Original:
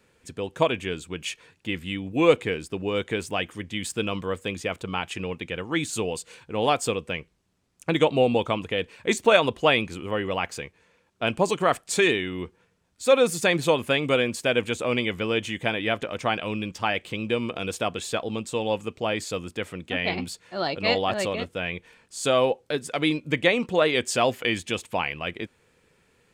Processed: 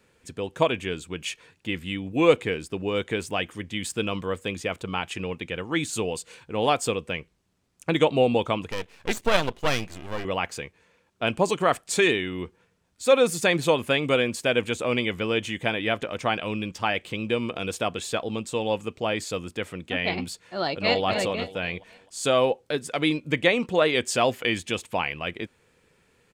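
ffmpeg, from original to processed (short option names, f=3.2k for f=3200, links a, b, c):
-filter_complex "[0:a]asettb=1/sr,asplit=3[a][b][c];[a]atrim=end=8.714[d];[b]atrim=start=8.71:end=10.25,asetpts=PTS-STARTPTS,afade=t=in:d=0.004:c=qsin,afade=t=out:st=1.536:d=0.004:c=qsin,aeval=exprs='max(val(0),0)':c=same[e];[c]atrim=start=10.246[f];[d][e]acrossfade=d=0.004:c1=hsin:c2=qsin[g];[g][f]acrossfade=d=0.004:c1=qsin:c2=hsin,asplit=2[h][i];[i]afade=t=in:st=20.55:d=0.01,afade=t=out:st=21.05:d=0.01,aecho=0:1:260|520|780|1040:0.354813|0.141925|0.0567701|0.0227081[j];[h][j]amix=inputs=2:normalize=0"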